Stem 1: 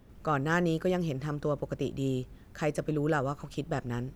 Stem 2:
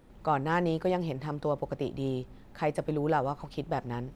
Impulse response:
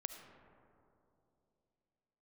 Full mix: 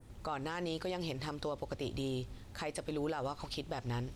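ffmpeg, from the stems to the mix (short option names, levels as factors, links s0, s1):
-filter_complex "[0:a]lowshelf=f=150:t=q:w=3:g=9.5,volume=0.224[s0];[1:a]equalizer=f=8000:w=0.42:g=11.5,volume=0.708[s1];[s0][s1]amix=inputs=2:normalize=0,adynamicequalizer=threshold=0.00282:dfrequency=3800:dqfactor=0.78:tfrequency=3800:tqfactor=0.78:attack=5:release=100:ratio=0.375:range=4:mode=boostabove:tftype=bell,alimiter=level_in=1.58:limit=0.0631:level=0:latency=1:release=131,volume=0.631"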